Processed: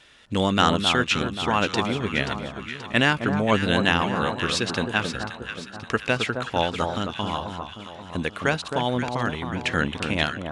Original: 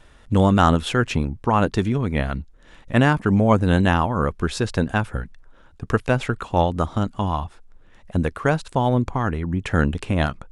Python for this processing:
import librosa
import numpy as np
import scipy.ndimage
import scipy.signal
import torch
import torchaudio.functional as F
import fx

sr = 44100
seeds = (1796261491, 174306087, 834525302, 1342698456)

p1 = fx.weighting(x, sr, curve='D')
p2 = p1 + fx.echo_alternate(p1, sr, ms=265, hz=1300.0, feedback_pct=68, wet_db=-5.5, dry=0)
y = p2 * librosa.db_to_amplitude(-4.0)